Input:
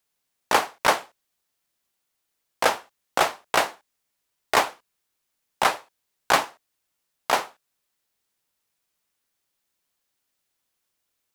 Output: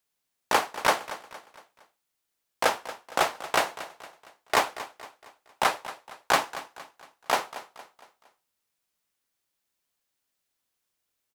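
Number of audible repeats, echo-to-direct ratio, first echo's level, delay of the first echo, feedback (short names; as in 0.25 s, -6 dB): 3, -14.0 dB, -15.0 dB, 0.231 s, 44%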